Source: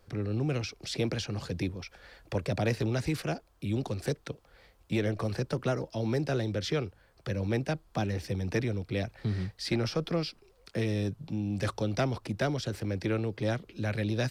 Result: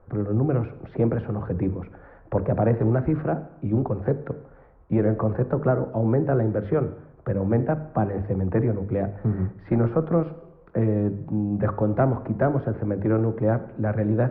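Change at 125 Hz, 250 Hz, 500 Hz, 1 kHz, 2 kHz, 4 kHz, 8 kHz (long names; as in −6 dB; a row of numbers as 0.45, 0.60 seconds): +8.0 dB, +8.5 dB, +8.5 dB, +8.5 dB, −1.0 dB, below −25 dB, below −35 dB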